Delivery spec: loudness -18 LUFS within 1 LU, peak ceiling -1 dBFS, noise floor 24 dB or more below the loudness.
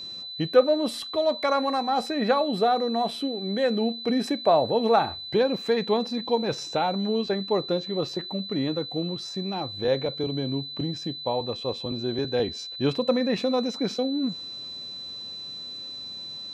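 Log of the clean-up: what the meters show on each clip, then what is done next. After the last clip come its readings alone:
ticks 24/s; steady tone 4000 Hz; tone level -35 dBFS; loudness -26.5 LUFS; peak -6.5 dBFS; loudness target -18.0 LUFS
-> de-click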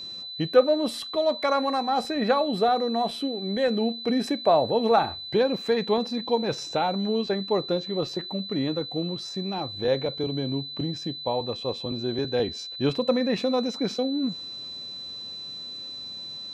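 ticks 0/s; steady tone 4000 Hz; tone level -35 dBFS
-> notch 4000 Hz, Q 30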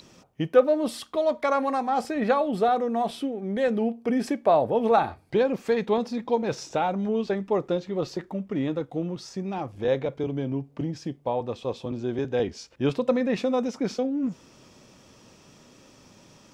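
steady tone none; loudness -26.5 LUFS; peak -6.5 dBFS; loudness target -18.0 LUFS
-> gain +8.5 dB; limiter -1 dBFS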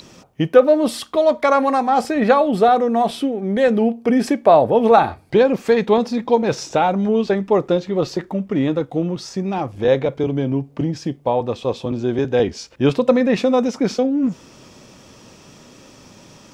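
loudness -18.0 LUFS; peak -1.0 dBFS; noise floor -46 dBFS

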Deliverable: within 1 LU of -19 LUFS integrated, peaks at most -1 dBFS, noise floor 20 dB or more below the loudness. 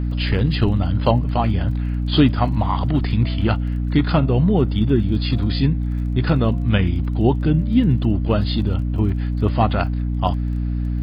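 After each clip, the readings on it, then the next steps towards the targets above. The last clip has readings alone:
ticks 22/s; hum 60 Hz; harmonics up to 300 Hz; hum level -19 dBFS; loudness -19.5 LUFS; peak -2.0 dBFS; loudness target -19.0 LUFS
-> de-click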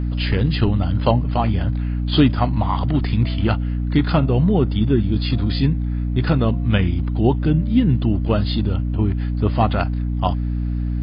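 ticks 0/s; hum 60 Hz; harmonics up to 300 Hz; hum level -19 dBFS
-> notches 60/120/180/240/300 Hz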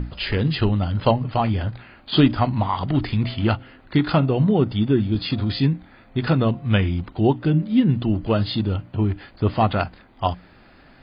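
hum none; loudness -21.5 LUFS; peak -4.0 dBFS; loudness target -19.0 LUFS
-> gain +2.5 dB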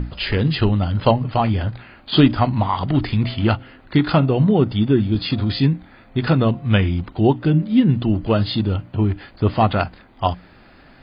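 loudness -19.0 LUFS; peak -1.5 dBFS; noise floor -48 dBFS

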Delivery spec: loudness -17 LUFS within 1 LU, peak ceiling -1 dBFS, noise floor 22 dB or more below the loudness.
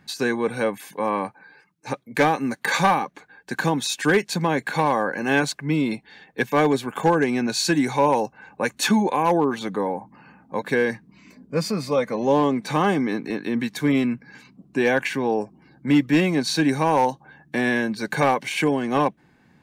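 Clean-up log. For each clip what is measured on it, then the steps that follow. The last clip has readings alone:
clipped 0.4%; flat tops at -11.0 dBFS; loudness -22.5 LUFS; peak -11.0 dBFS; loudness target -17.0 LUFS
-> clip repair -11 dBFS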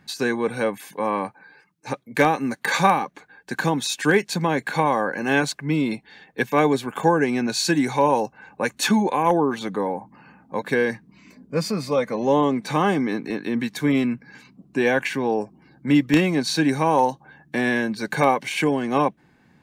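clipped 0.0%; loudness -22.5 LUFS; peak -2.0 dBFS; loudness target -17.0 LUFS
-> gain +5.5 dB; limiter -1 dBFS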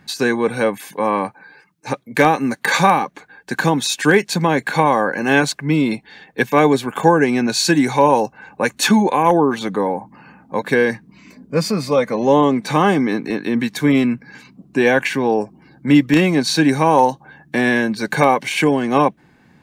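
loudness -17.0 LUFS; peak -1.0 dBFS; noise floor -53 dBFS

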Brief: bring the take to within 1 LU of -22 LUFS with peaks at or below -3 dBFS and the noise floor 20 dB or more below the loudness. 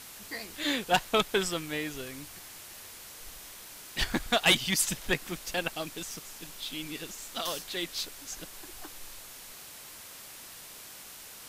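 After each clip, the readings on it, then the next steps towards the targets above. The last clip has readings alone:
noise floor -47 dBFS; noise floor target -51 dBFS; loudness -30.5 LUFS; peak -13.5 dBFS; loudness target -22.0 LUFS
-> denoiser 6 dB, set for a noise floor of -47 dBFS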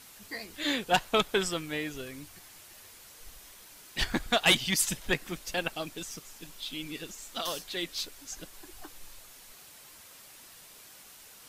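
noise floor -52 dBFS; loudness -30.5 LUFS; peak -13.5 dBFS; loudness target -22.0 LUFS
-> gain +8.5 dB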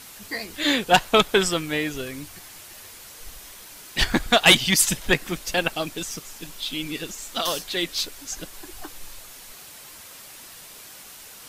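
loudness -22.0 LUFS; peak -5.0 dBFS; noise floor -44 dBFS

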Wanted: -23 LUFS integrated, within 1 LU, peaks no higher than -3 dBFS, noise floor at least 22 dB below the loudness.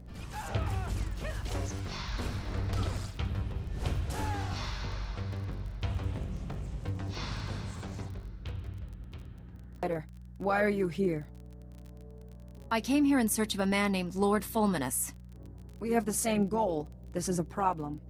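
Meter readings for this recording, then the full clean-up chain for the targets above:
ticks 29/s; hum 60 Hz; harmonics up to 180 Hz; hum level -46 dBFS; loudness -33.0 LUFS; peak -15.0 dBFS; loudness target -23.0 LUFS
-> de-click; de-hum 60 Hz, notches 3; gain +10 dB

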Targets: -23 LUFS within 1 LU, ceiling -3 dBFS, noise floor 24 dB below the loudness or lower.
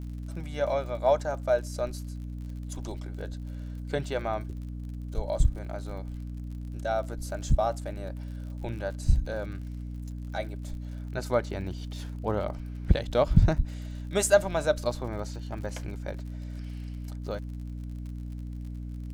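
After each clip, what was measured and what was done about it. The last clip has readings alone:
ticks 54/s; hum 60 Hz; harmonics up to 300 Hz; hum level -34 dBFS; loudness -31.5 LUFS; peak -5.5 dBFS; loudness target -23.0 LUFS
-> de-click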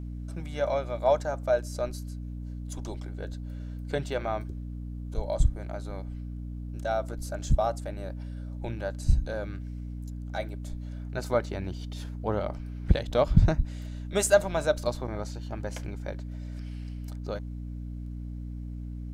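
ticks 0.16/s; hum 60 Hz; harmonics up to 300 Hz; hum level -34 dBFS
-> de-hum 60 Hz, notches 5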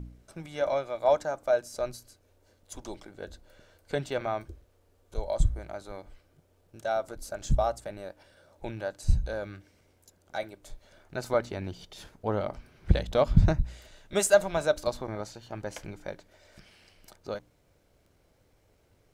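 hum none; loudness -30.5 LUFS; peak -6.5 dBFS; loudness target -23.0 LUFS
-> gain +7.5 dB; limiter -3 dBFS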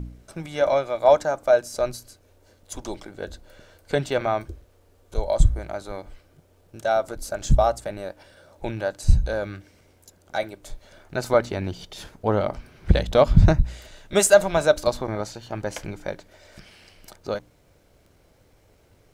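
loudness -23.5 LUFS; peak -3.0 dBFS; noise floor -59 dBFS

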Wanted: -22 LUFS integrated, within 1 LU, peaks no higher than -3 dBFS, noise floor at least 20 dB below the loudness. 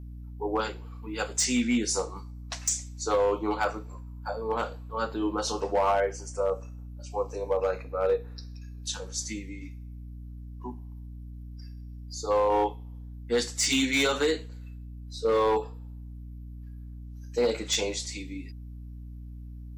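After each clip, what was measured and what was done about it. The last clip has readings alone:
clipped 0.5%; flat tops at -18.5 dBFS; hum 60 Hz; harmonics up to 300 Hz; hum level -39 dBFS; loudness -28.5 LUFS; peak -18.5 dBFS; loudness target -22.0 LUFS
-> clip repair -18.5 dBFS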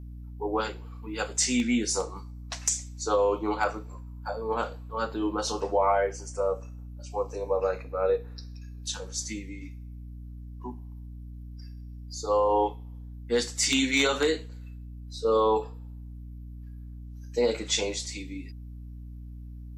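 clipped 0.0%; hum 60 Hz; harmonics up to 300 Hz; hum level -39 dBFS
-> de-hum 60 Hz, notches 5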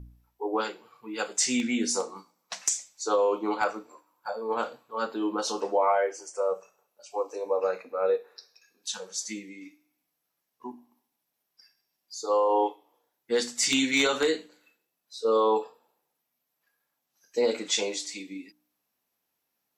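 hum none; loudness -28.0 LUFS; peak -9.5 dBFS; loudness target -22.0 LUFS
-> gain +6 dB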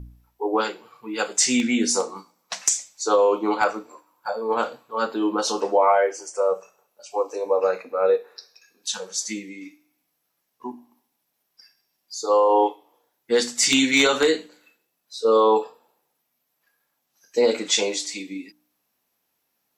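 loudness -22.0 LUFS; peak -3.5 dBFS; noise floor -75 dBFS

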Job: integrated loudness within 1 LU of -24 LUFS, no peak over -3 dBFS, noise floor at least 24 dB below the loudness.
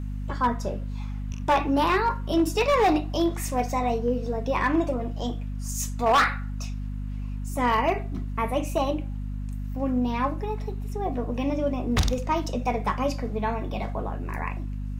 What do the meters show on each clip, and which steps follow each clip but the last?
clipped 0.8%; flat tops at -15.5 dBFS; hum 50 Hz; harmonics up to 250 Hz; hum level -29 dBFS; loudness -26.5 LUFS; peak -15.5 dBFS; loudness target -24.0 LUFS
-> clip repair -15.5 dBFS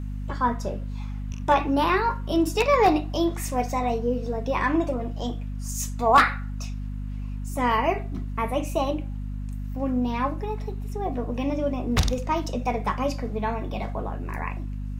clipped 0.0%; hum 50 Hz; harmonics up to 250 Hz; hum level -29 dBFS
-> notches 50/100/150/200/250 Hz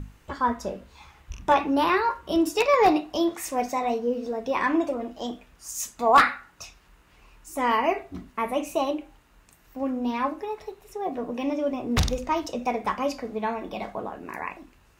hum none; loudness -26.0 LUFS; peak -5.5 dBFS; loudness target -24.0 LUFS
-> gain +2 dB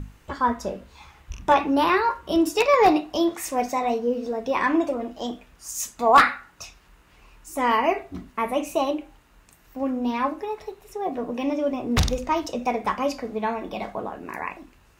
loudness -24.0 LUFS; peak -3.5 dBFS; noise floor -56 dBFS

